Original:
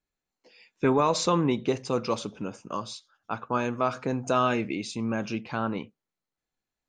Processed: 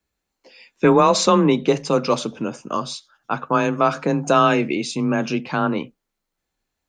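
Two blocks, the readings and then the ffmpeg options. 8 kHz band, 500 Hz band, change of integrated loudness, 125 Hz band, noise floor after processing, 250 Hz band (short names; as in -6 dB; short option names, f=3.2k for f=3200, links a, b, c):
+8.5 dB, +9.0 dB, +8.5 dB, +7.0 dB, -80 dBFS, +8.5 dB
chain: -af "afreqshift=22,volume=8.5dB"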